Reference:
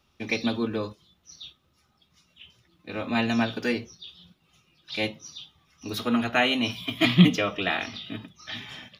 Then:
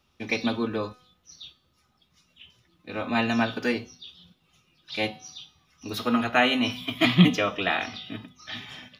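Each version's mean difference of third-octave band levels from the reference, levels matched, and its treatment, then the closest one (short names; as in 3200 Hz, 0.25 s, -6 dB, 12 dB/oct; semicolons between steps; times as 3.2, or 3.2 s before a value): 1.0 dB: dynamic EQ 1000 Hz, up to +4 dB, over -39 dBFS, Q 0.74; resonator 250 Hz, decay 0.67 s, harmonics all, mix 60%; gain +6.5 dB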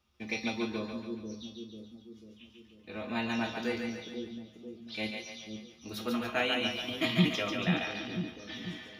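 6.5 dB: resonator 71 Hz, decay 0.24 s, harmonics odd, mix 80%; on a send: split-band echo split 460 Hz, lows 0.492 s, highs 0.142 s, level -4 dB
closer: first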